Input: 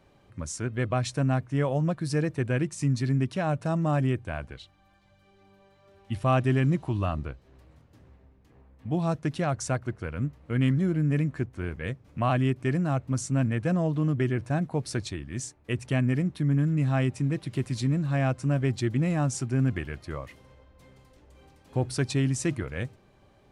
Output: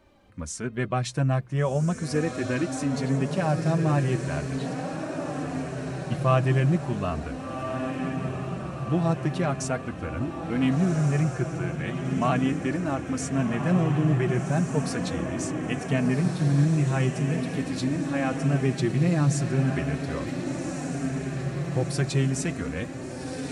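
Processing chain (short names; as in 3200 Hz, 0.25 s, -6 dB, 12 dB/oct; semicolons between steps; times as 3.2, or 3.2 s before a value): diffused feedback echo 1.502 s, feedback 64%, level -5 dB; flange 0.39 Hz, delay 3.2 ms, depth 2.9 ms, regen -22%; gain +4.5 dB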